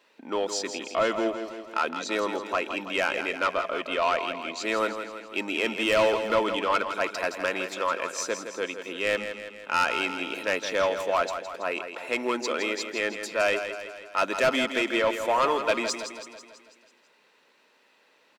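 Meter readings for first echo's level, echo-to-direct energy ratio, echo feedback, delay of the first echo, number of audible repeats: -9.0 dB, -7.5 dB, 56%, 164 ms, 6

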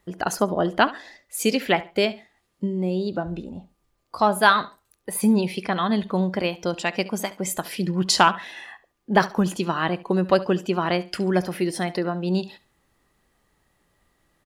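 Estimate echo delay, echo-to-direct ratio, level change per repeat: 70 ms, -18.0 dB, -12.5 dB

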